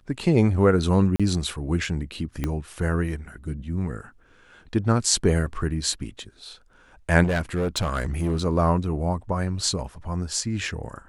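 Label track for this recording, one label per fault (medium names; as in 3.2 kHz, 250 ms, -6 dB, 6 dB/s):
1.160000	1.200000	dropout 36 ms
2.440000	2.440000	pop -13 dBFS
7.230000	8.400000	clipped -19.5 dBFS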